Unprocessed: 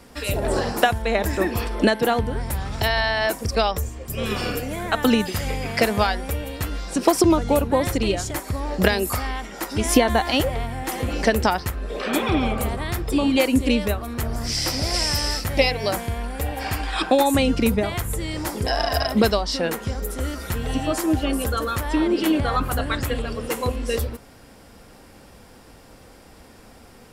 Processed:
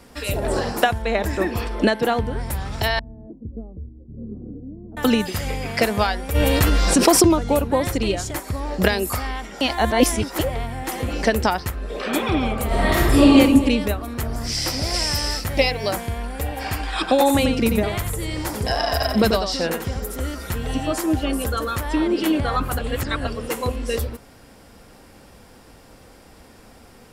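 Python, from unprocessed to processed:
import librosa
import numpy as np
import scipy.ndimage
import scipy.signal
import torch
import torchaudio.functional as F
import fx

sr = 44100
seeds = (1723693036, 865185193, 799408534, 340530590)

y = fx.high_shelf(x, sr, hz=8900.0, db=-7.0, at=(0.84, 2.39))
y = fx.ladder_lowpass(y, sr, hz=340.0, resonance_pct=40, at=(2.99, 4.97))
y = fx.env_flatten(y, sr, amount_pct=70, at=(6.34, 7.27), fade=0.02)
y = fx.reverb_throw(y, sr, start_s=12.67, length_s=0.65, rt60_s=1.4, drr_db=-9.0)
y = fx.quant_companded(y, sr, bits=8, at=(14.84, 16.03))
y = fx.echo_single(y, sr, ms=90, db=-6.5, at=(17.07, 20.15), fade=0.02)
y = fx.edit(y, sr, fx.reverse_span(start_s=9.61, length_s=0.78),
    fx.reverse_span(start_s=22.79, length_s=0.48), tone=tone)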